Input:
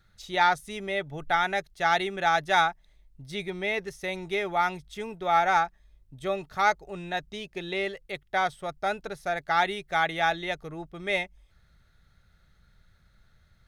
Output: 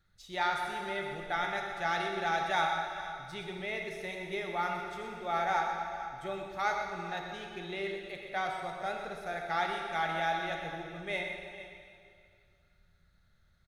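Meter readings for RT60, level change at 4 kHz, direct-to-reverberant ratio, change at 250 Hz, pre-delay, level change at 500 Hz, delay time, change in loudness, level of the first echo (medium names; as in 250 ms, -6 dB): 2.3 s, -6.5 dB, 1.0 dB, -6.0 dB, 6 ms, -6.0 dB, 122 ms, -6.5 dB, -9.0 dB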